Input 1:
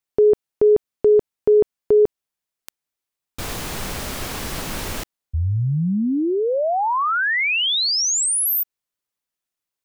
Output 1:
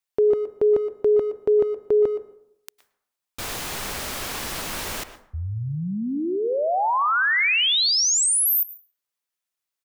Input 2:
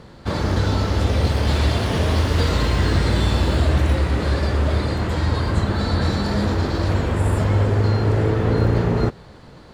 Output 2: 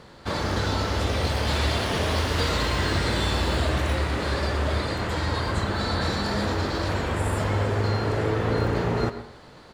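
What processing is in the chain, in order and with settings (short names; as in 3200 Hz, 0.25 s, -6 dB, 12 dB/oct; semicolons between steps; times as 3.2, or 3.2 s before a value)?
low shelf 410 Hz -8.5 dB; speakerphone echo 0.12 s, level -13 dB; plate-style reverb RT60 0.78 s, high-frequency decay 0.4×, pre-delay 95 ms, DRR 15.5 dB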